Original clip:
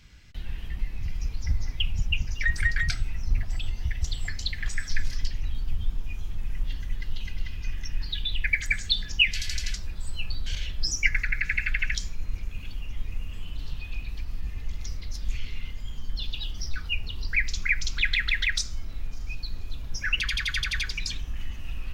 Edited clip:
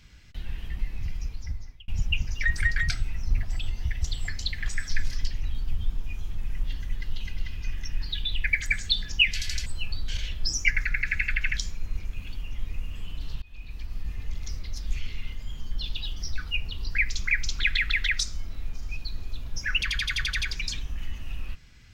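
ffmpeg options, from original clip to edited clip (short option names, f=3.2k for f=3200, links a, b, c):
-filter_complex "[0:a]asplit=4[a][b][c][d];[a]atrim=end=1.88,asetpts=PTS-STARTPTS,afade=t=out:st=1.03:d=0.85[e];[b]atrim=start=1.88:end=9.662,asetpts=PTS-STARTPTS,afade=t=in:d=0.004:c=hsin[f];[c]atrim=start=10.038:end=13.8,asetpts=PTS-STARTPTS,afade=t=out:st=3.758:d=0.004:c=hsin:silence=0.0794328[g];[d]atrim=start=13.8,asetpts=PTS-STARTPTS,afade=t=in:d=0.77:c=qsin:silence=0.0794328[h];[e][f]concat=n=2:v=0:a=1[i];[g][h]concat=n=2:v=0:a=1[j];[i][j]acrossfade=d=0.004:c1=hsin:c2=hsin"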